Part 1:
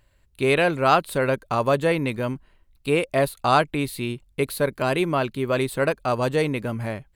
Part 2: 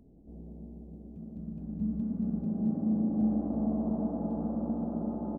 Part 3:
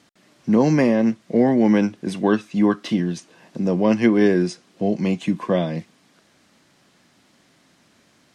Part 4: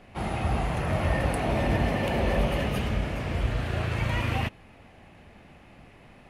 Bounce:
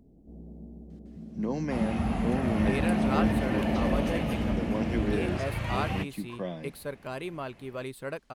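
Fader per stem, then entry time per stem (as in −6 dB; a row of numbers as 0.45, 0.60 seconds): −14.0, +0.5, −15.0, −5.0 decibels; 2.25, 0.00, 0.90, 1.55 seconds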